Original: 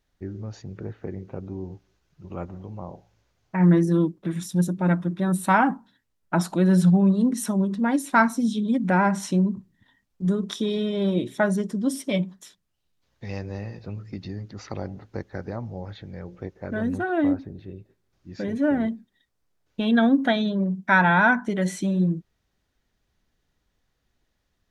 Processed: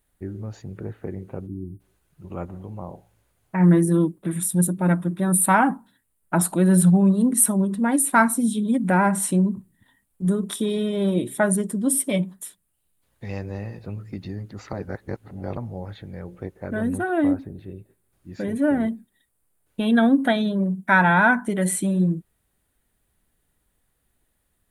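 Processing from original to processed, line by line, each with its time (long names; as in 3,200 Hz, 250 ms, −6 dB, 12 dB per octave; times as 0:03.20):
0:01.47–0:01.80: gain on a spectral selection 380–8,400 Hz −30 dB
0:14.73–0:15.57: reverse
whole clip: high shelf with overshoot 7,400 Hz +10 dB, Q 3; level +1.5 dB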